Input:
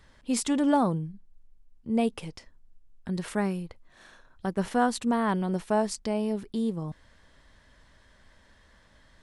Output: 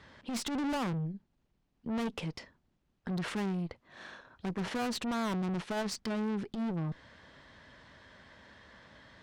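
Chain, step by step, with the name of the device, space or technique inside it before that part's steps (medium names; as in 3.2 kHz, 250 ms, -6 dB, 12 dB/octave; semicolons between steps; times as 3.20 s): valve radio (band-pass 100–4600 Hz; valve stage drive 37 dB, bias 0.35; transformer saturation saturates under 110 Hz); trim +6.5 dB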